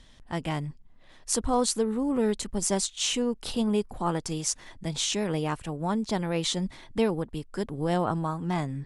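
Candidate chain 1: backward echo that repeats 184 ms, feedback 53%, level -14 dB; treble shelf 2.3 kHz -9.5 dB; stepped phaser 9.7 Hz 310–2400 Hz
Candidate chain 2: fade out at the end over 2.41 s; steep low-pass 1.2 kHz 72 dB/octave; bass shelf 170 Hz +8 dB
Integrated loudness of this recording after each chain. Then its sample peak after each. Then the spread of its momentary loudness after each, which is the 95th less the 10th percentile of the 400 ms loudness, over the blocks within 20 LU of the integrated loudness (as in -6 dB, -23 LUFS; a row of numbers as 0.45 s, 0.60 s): -33.5 LUFS, -28.5 LUFS; -15.0 dBFS, -12.5 dBFS; 9 LU, 12 LU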